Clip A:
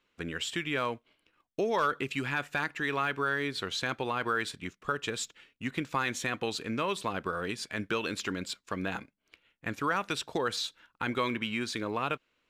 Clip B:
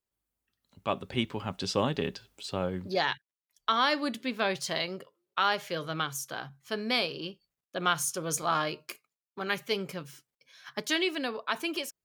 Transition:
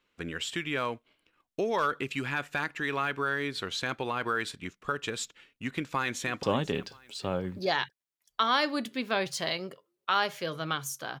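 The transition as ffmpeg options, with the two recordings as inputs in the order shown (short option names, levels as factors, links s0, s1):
-filter_complex "[0:a]apad=whole_dur=11.2,atrim=end=11.2,atrim=end=6.432[s0];[1:a]atrim=start=1.718:end=6.49[s1];[s0][s1]acrossfade=d=0.004:c1=hsin:c2=hsin,asplit=2[s2][s3];[s3]afade=t=in:st=5.75:d=0.01,afade=t=out:st=6.43:d=0.01,aecho=0:1:490|980|1470:0.158489|0.0475468|0.014264[s4];[s2][s4]amix=inputs=2:normalize=0"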